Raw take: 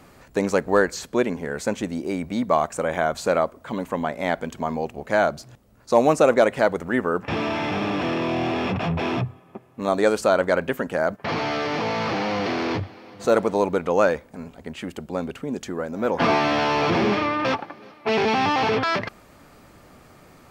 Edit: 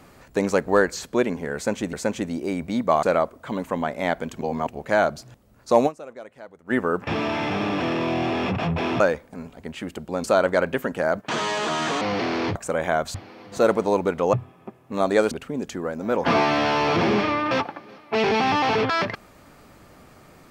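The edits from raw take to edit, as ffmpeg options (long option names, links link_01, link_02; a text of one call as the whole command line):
ffmpeg -i in.wav -filter_complex "[0:a]asplit=15[link_01][link_02][link_03][link_04][link_05][link_06][link_07][link_08][link_09][link_10][link_11][link_12][link_13][link_14][link_15];[link_01]atrim=end=1.932[link_16];[link_02]atrim=start=1.548:end=2.652[link_17];[link_03]atrim=start=3.238:end=4.622[link_18];[link_04]atrim=start=4.618:end=4.882,asetpts=PTS-STARTPTS,areverse[link_19];[link_05]atrim=start=4.878:end=6.25,asetpts=PTS-STARTPTS,afade=type=out:start_time=1.192:duration=0.18:curve=exp:silence=0.0749894[link_20];[link_06]atrim=start=6.25:end=6.74,asetpts=PTS-STARTPTS,volume=-22.5dB[link_21];[link_07]atrim=start=6.74:end=9.212,asetpts=PTS-STARTPTS,afade=type=in:duration=0.18:curve=exp:silence=0.0749894[link_22];[link_08]atrim=start=14.008:end=15.252[link_23];[link_09]atrim=start=10.188:end=11.214[link_24];[link_10]atrim=start=11.21:end=12.28,asetpts=PTS-STARTPTS,asetrate=62622,aresample=44100,atrim=end_sample=33230,asetpts=PTS-STARTPTS[link_25];[link_11]atrim=start=12.276:end=12.822[link_26];[link_12]atrim=start=2.648:end=3.242[link_27];[link_13]atrim=start=12.818:end=14.012[link_28];[link_14]atrim=start=9.208:end=10.192[link_29];[link_15]atrim=start=15.248[link_30];[link_16][link_17]acrossfade=duration=0.004:curve1=hsin:curve2=hsin[link_31];[link_31][link_18]acrossfade=duration=0.004:curve1=hsin:curve2=hsin[link_32];[link_32][link_19]acrossfade=duration=0.004:curve1=hsin:curve2=hsin[link_33];[link_20][link_21][link_22]concat=n=3:v=0:a=1[link_34];[link_33][link_34]acrossfade=duration=0.004:curve1=hsin:curve2=hsin[link_35];[link_35][link_23]acrossfade=duration=0.004:curve1=hsin:curve2=hsin[link_36];[link_36][link_24]acrossfade=duration=0.004:curve1=hsin:curve2=hsin[link_37];[link_37][link_25]acrossfade=duration=0.004:curve1=hsin:curve2=hsin[link_38];[link_38][link_26]acrossfade=duration=0.004:curve1=hsin:curve2=hsin[link_39];[link_39][link_27]acrossfade=duration=0.004:curve1=hsin:curve2=hsin[link_40];[link_40][link_28]acrossfade=duration=0.004:curve1=hsin:curve2=hsin[link_41];[link_41][link_29]acrossfade=duration=0.004:curve1=hsin:curve2=hsin[link_42];[link_42][link_30]acrossfade=duration=0.004:curve1=hsin:curve2=hsin" out.wav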